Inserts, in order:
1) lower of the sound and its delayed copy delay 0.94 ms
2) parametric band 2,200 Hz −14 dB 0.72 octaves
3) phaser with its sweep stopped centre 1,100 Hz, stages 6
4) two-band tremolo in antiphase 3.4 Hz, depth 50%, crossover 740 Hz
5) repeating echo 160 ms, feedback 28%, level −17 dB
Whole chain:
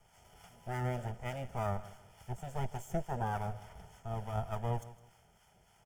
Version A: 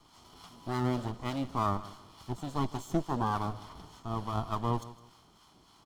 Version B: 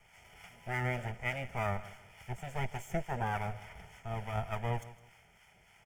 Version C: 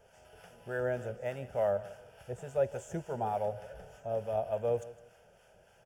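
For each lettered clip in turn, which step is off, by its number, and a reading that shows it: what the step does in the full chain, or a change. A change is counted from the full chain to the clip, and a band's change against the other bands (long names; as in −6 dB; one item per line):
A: 3, 250 Hz band +7.5 dB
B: 2, 2 kHz band +9.0 dB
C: 1, 500 Hz band +10.0 dB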